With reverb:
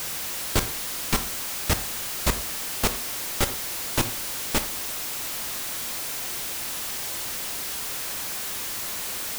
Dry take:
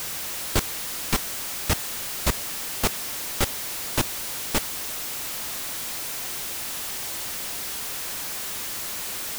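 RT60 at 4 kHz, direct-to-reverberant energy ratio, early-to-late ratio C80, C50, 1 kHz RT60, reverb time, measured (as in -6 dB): 0.30 s, 10.0 dB, 18.5 dB, 14.5 dB, 0.40 s, 0.45 s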